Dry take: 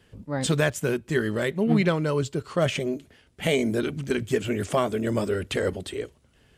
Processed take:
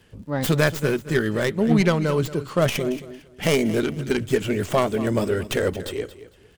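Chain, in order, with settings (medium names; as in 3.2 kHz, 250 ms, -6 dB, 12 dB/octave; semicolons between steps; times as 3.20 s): tracing distortion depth 0.27 ms; crackle 41 per s -51 dBFS; on a send: feedback delay 227 ms, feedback 24%, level -15 dB; on the sum: trim +3 dB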